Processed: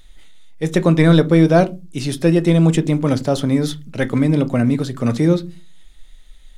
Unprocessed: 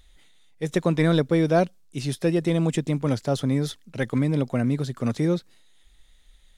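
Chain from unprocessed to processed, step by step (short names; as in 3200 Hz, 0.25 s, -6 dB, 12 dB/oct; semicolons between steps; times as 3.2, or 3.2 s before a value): on a send: LPF 3300 Hz + reverb RT60 0.25 s, pre-delay 3 ms, DRR 10 dB; on the sum: gain +6.5 dB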